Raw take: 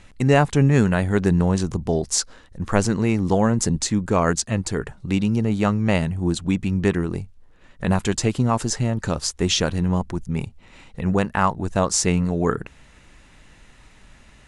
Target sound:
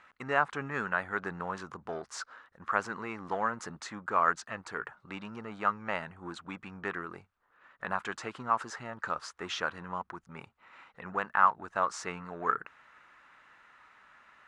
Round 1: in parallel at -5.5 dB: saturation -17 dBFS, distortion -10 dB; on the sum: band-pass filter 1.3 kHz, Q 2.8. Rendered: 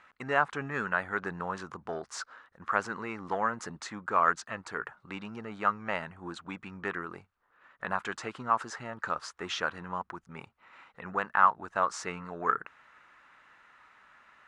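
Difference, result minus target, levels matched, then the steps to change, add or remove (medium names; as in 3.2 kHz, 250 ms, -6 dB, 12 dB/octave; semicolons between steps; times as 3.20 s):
saturation: distortion -6 dB
change: saturation -28 dBFS, distortion -4 dB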